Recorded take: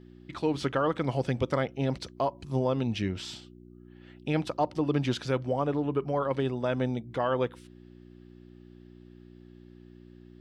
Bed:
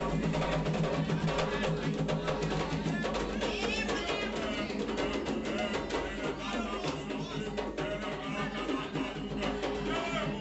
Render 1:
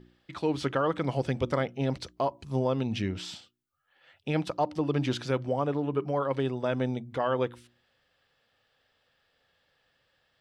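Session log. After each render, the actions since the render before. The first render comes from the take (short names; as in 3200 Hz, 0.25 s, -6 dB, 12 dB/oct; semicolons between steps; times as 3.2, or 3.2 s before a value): de-hum 60 Hz, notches 6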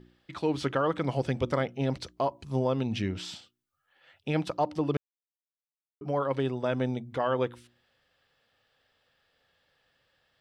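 4.97–6.01 mute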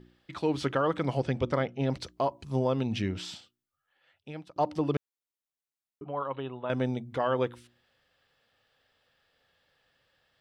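1.2–1.9 air absorption 62 m; 3.19–4.56 fade out, to -21.5 dB; 6.04–6.7 rippled Chebyshev low-pass 4000 Hz, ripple 9 dB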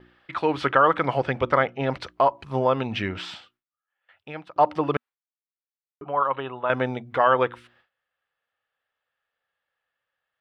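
gate with hold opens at -57 dBFS; EQ curve 240 Hz 0 dB, 1300 Hz +14 dB, 2600 Hz +9 dB, 6500 Hz -5 dB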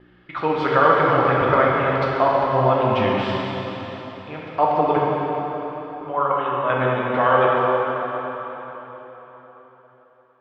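air absorption 120 m; plate-style reverb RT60 4.2 s, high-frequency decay 0.85×, DRR -4.5 dB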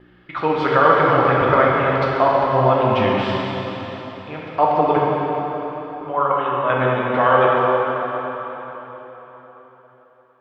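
gain +2 dB; limiter -2 dBFS, peak gain reduction 1.5 dB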